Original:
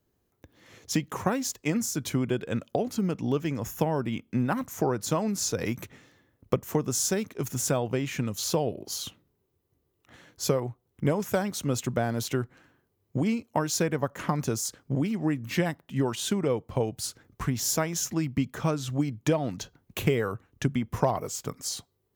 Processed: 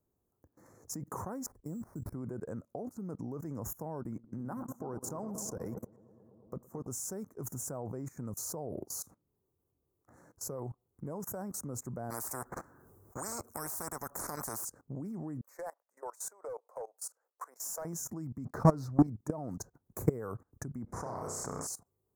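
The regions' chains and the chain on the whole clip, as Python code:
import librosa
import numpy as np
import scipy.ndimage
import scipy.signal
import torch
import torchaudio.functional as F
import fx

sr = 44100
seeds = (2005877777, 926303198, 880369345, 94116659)

y = fx.chain(x, sr, fx.tilt_eq(slope=-4.0),
    fx.level_steps(step_db=12),
    fx.sample_hold(seeds[0], rate_hz=7600.0, jitter_pct=0), at=(1.46, 2.14))
y = fx.chain(y, sr, fx.level_steps(step_db=17),
    fx.echo_bbd(ms=112, stages=1024, feedback_pct=77, wet_db=-10.5), at=(4.01, 6.87))
y = fx.chain(y, sr, fx.peak_eq(hz=1400.0, db=6.0, octaves=0.68),
    fx.spectral_comp(ratio=10.0), at=(12.1, 14.65))
y = fx.chain(y, sr, fx.cheby1_highpass(hz=510.0, order=4),
    fx.overload_stage(gain_db=26.0),
    fx.upward_expand(threshold_db=-39.0, expansion=1.5), at=(15.41, 17.85))
y = fx.chain(y, sr, fx.high_shelf_res(hz=6100.0, db=-12.0, q=3.0),
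    fx.leveller(passes=2), at=(18.45, 19.07))
y = fx.chain(y, sr, fx.air_absorb(metres=100.0),
    fx.room_flutter(wall_m=5.5, rt60_s=0.35),
    fx.spectral_comp(ratio=2.0), at=(20.86, 21.67))
y = scipy.signal.sosfilt(scipy.signal.cheby1(2, 1.0, [1100.0, 7800.0], 'bandstop', fs=sr, output='sos'), y)
y = fx.level_steps(y, sr, step_db=21)
y = F.gain(torch.from_numpy(y), 2.5).numpy()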